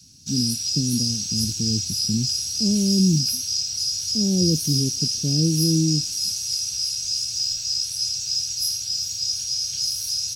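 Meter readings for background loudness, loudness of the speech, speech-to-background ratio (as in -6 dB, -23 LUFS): -22.5 LUFS, -24.5 LUFS, -2.0 dB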